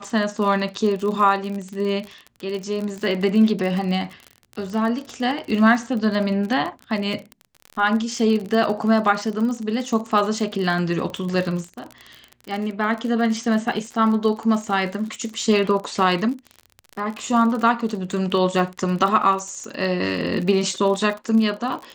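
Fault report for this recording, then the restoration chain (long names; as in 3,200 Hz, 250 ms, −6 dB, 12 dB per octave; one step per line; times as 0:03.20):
surface crackle 43 per second −27 dBFS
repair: click removal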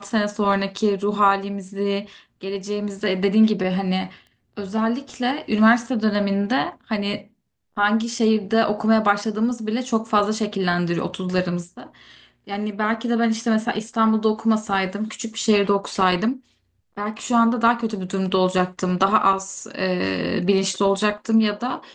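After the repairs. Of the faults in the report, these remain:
none of them is left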